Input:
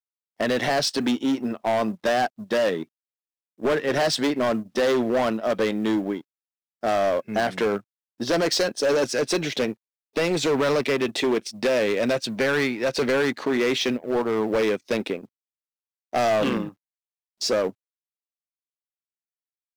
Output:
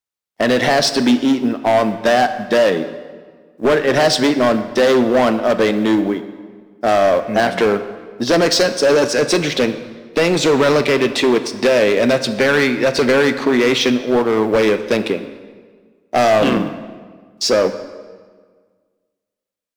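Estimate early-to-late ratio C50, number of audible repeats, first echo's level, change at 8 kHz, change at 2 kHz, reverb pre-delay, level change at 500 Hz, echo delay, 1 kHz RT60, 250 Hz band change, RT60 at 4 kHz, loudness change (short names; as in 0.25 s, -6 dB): 11.0 dB, none, none, +7.5 dB, +8.5 dB, 10 ms, +8.5 dB, none, 1.6 s, +8.5 dB, 1.2 s, +8.5 dB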